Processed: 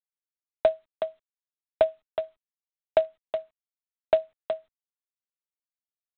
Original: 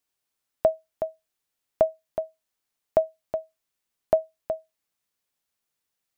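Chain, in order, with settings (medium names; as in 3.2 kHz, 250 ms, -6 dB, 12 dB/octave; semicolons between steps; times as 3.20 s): G.726 24 kbps 8 kHz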